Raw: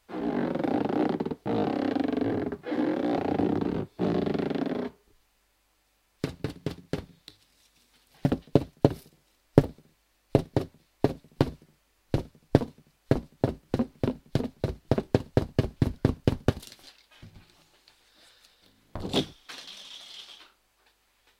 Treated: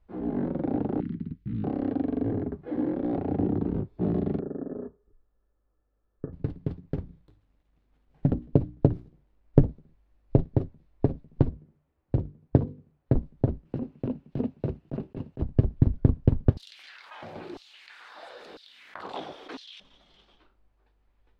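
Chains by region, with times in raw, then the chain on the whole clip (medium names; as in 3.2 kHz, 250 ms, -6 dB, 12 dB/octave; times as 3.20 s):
1.00–1.64 s: Chebyshev band-stop 190–2200 Hz + treble shelf 5 kHz -7 dB
4.39–6.33 s: rippled Chebyshev low-pass 1.8 kHz, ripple 9 dB + companded quantiser 8-bit
6.86–9.67 s: dead-time distortion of 0.081 ms + hum notches 60/120/180/240/300/360 Hz
11.49–13.15 s: high-pass 55 Hz + hum notches 50/100/150/200/250/300/350/400/450/500 Hz + tape noise reduction on one side only decoder only
13.65–15.42 s: high-pass 140 Hz + peaking EQ 2.7 kHz +8 dB 0.28 oct + compressor with a negative ratio -28 dBFS, ratio -0.5
16.57–19.80 s: LFO high-pass saw down 1 Hz 300–4600 Hz + level flattener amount 70%
whole clip: low-pass 3 kHz 6 dB/octave; tilt EQ -4 dB/octave; trim -7.5 dB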